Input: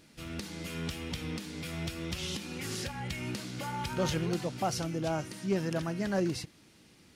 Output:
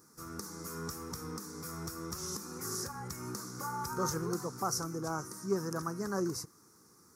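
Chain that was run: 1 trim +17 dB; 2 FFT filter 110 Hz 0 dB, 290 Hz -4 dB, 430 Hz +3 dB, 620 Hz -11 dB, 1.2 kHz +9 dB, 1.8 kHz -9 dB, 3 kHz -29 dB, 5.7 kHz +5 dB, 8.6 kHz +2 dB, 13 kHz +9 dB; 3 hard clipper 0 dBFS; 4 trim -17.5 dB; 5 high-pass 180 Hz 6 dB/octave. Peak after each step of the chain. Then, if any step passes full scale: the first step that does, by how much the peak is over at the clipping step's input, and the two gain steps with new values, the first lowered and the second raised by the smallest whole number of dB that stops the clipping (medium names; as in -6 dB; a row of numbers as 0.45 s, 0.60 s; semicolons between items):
-3.0 dBFS, -2.0 dBFS, -2.0 dBFS, -19.5 dBFS, -20.0 dBFS; nothing clips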